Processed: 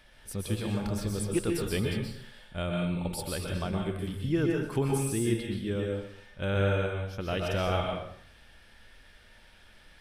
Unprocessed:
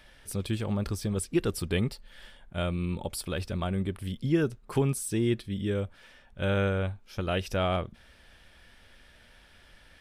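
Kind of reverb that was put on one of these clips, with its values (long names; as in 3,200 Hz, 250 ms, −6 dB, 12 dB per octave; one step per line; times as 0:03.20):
dense smooth reverb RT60 0.64 s, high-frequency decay 0.95×, pre-delay 110 ms, DRR −0.5 dB
level −3 dB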